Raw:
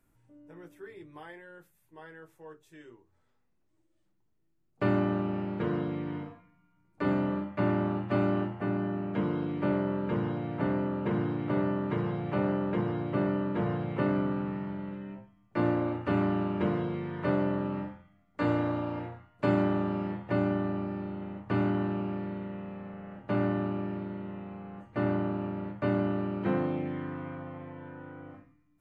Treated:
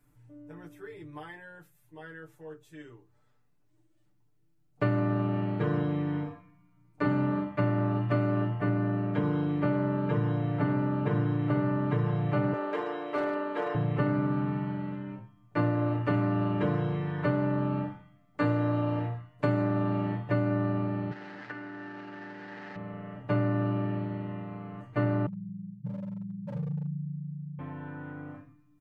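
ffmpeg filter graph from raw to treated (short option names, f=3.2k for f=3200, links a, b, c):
-filter_complex "[0:a]asettb=1/sr,asplit=3[a][b][c];[a]atrim=end=12.534[d];[b]atrim=start=12.53:end=13.75,asetpts=PTS-STARTPTS,afade=t=in:d=0.004:c=qsin,afade=t=out:st=1.216:d=0.004:c=qsin,highpass=f=360:w=0.5412,highpass=f=360:w=1.3066,highshelf=f=2.5k:g=3,asoftclip=type=hard:threshold=-26.5dB[e];[c]atrim=start=13.746[f];[d][e]acrossfade=d=0.004:c1=hsin:c2=qsin[g];[g][f]acrossfade=d=0.004:c1=qsin:c2=hsin,asettb=1/sr,asplit=3[h][i][j];[h]atrim=end=21.114[k];[i]atrim=start=21.11:end=22.76,asetpts=PTS-STARTPTS,afade=t=in:d=0.004:c=qsin,afade=t=out:st=1.646:d=0.004:c=qsin,aeval=exprs='val(0)+0.5*0.015*sgn(val(0))':c=same,acompressor=threshold=-33dB:ratio=12:attack=3.2:release=140:knee=1:detection=peak,highpass=420,equalizer=f=440:t=q:w=4:g=-5,equalizer=f=640:t=q:w=4:g=-10,equalizer=f=1.1k:t=q:w=4:g=-8,equalizer=f=1.7k:t=q:w=4:g=8,equalizer=f=2.4k:t=q:w=4:g=-4,equalizer=f=3.5k:t=q:w=4:g=-8,lowpass=f=4k:w=0.5412,lowpass=f=4k:w=1.3066[l];[j]atrim=start=22.756[m];[k][l]acrossfade=d=0.004:c1=hsin:c2=qsin[n];[n][m]acrossfade=d=0.004:c1=qsin:c2=hsin,asettb=1/sr,asplit=3[o][p][q];[o]atrim=end=25.264[r];[p]atrim=start=25.26:end=27.59,asetpts=PTS-STARTPTS,afade=t=in:d=0.004:c=qsin,afade=t=out:st=2.326:d=0.004:c=qsin,asuperpass=centerf=160:order=8:qfactor=2.5,aeval=exprs='0.02*(abs(mod(val(0)/0.02+3,4)-2)-1)':c=same[s];[q]atrim=start=27.586[t];[r][s]acrossfade=d=0.004:c1=hsin:c2=qsin[u];[u][t]acrossfade=d=0.004:c1=qsin:c2=hsin,equalizer=f=120:t=o:w=0.39:g=7.5,aecho=1:1:6.8:0.89,acompressor=threshold=-23dB:ratio=6"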